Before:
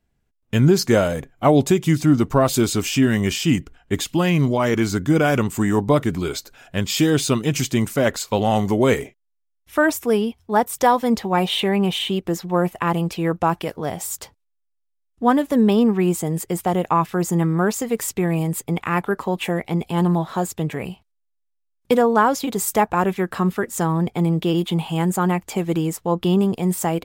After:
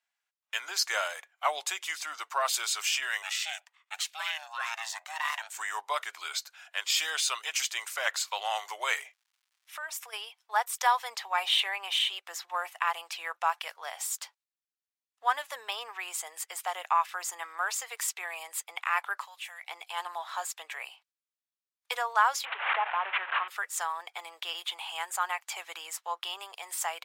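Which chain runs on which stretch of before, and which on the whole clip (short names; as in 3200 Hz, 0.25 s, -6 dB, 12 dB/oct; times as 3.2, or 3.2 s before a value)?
3.22–5.58 HPF 1000 Hz 6 dB/oct + ring modulator 460 Hz
9.01–10.12 compressor 16:1, threshold -25 dBFS + crackle 370/s -57 dBFS
19.24–19.64 LPF 3200 Hz 6 dB/oct + differentiator + fast leveller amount 50%
22.45–23.48 delta modulation 16 kbps, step -22 dBFS + LPF 1800 Hz 6 dB/oct + backwards sustainer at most 62 dB/s
whole clip: Bessel high-pass 1300 Hz, order 6; high shelf 10000 Hz -9.5 dB; gain -1 dB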